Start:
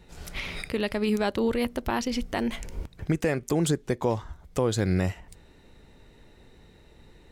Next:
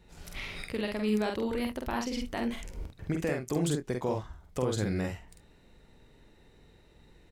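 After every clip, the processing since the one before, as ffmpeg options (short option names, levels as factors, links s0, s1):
-af "aecho=1:1:47|71:0.668|0.178,volume=0.473"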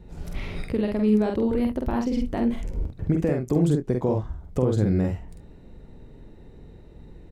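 -filter_complex "[0:a]tiltshelf=f=900:g=8.5,asplit=2[s0][s1];[s1]acompressor=threshold=0.0251:ratio=6,volume=0.891[s2];[s0][s2]amix=inputs=2:normalize=0"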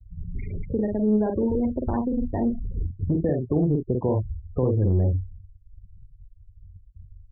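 -filter_complex "[0:a]afftfilt=real='re*gte(hypot(re,im),0.0447)':imag='im*gte(hypot(re,im),0.0447)':win_size=1024:overlap=0.75,equalizer=f=94:t=o:w=0.27:g=13,acrossover=split=300|690|1300[s0][s1][s2][s3];[s0]asoftclip=type=tanh:threshold=0.126[s4];[s4][s1][s2][s3]amix=inputs=4:normalize=0"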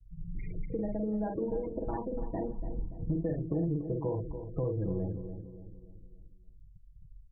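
-filter_complex "[0:a]aecho=1:1:6.2:0.86,acompressor=threshold=0.0891:ratio=3,asplit=2[s0][s1];[s1]adelay=288,lowpass=f=840:p=1,volume=0.376,asplit=2[s2][s3];[s3]adelay=288,lowpass=f=840:p=1,volume=0.48,asplit=2[s4][s5];[s5]adelay=288,lowpass=f=840:p=1,volume=0.48,asplit=2[s6][s7];[s7]adelay=288,lowpass=f=840:p=1,volume=0.48,asplit=2[s8][s9];[s9]adelay=288,lowpass=f=840:p=1,volume=0.48[s10];[s0][s2][s4][s6][s8][s10]amix=inputs=6:normalize=0,volume=0.376"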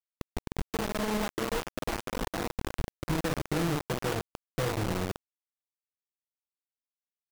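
-af "lowpass=f=2000:p=1,acrusher=bits=4:mix=0:aa=0.000001"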